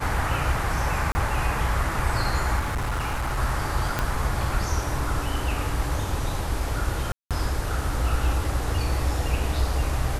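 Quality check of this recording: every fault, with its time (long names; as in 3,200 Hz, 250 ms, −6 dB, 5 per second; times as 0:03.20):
0:01.12–0:01.15: drop-out 30 ms
0:02.59–0:03.39: clipping −23 dBFS
0:03.99: click −9 dBFS
0:07.12–0:07.31: drop-out 187 ms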